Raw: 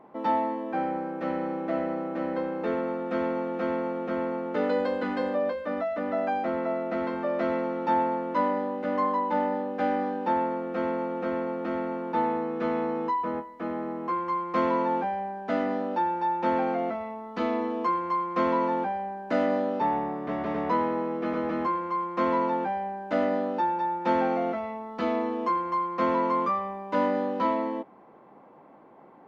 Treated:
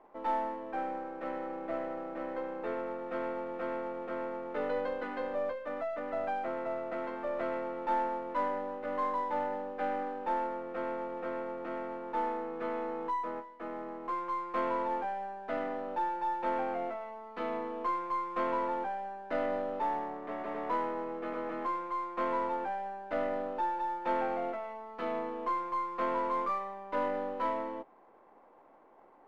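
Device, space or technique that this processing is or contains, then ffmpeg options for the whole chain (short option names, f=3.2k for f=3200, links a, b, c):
crystal radio: -af "highpass=360,lowpass=3.1k,aeval=exprs='if(lt(val(0),0),0.708*val(0),val(0))':c=same,volume=-4.5dB"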